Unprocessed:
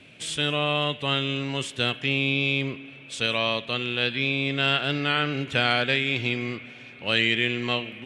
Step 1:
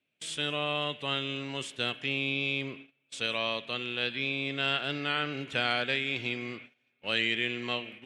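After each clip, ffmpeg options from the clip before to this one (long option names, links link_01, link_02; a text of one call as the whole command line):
ffmpeg -i in.wav -af "highpass=frequency=190:poles=1,agate=range=-24dB:threshold=-40dB:ratio=16:detection=peak,volume=-6dB" out.wav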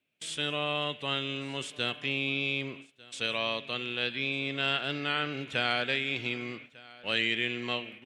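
ffmpeg -i in.wav -af "aecho=1:1:1198:0.0794" out.wav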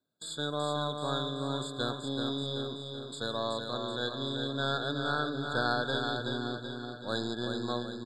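ffmpeg -i in.wav -af "aeval=exprs='0.237*(cos(1*acos(clip(val(0)/0.237,-1,1)))-cos(1*PI/2))+0.0596*(cos(2*acos(clip(val(0)/0.237,-1,1)))-cos(2*PI/2))':channel_layout=same,aecho=1:1:380|760|1140|1520|1900|2280:0.531|0.265|0.133|0.0664|0.0332|0.0166,afftfilt=real='re*eq(mod(floor(b*sr/1024/1700),2),0)':imag='im*eq(mod(floor(b*sr/1024/1700),2),0)':win_size=1024:overlap=0.75" out.wav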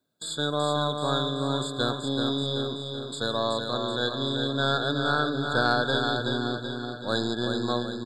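ffmpeg -i in.wav -af "acontrast=62" out.wav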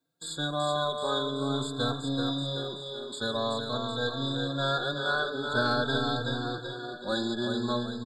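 ffmpeg -i in.wav -filter_complex "[0:a]asplit=2[link_01][link_02];[link_02]adelay=3.9,afreqshift=0.47[link_03];[link_01][link_03]amix=inputs=2:normalize=1" out.wav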